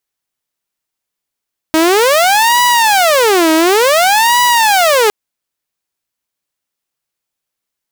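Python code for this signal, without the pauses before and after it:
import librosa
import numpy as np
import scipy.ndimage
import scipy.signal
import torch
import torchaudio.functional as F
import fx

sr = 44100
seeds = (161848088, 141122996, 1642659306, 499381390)

y = fx.siren(sr, length_s=3.36, kind='wail', low_hz=317.0, high_hz=978.0, per_s=0.56, wave='saw', level_db=-5.0)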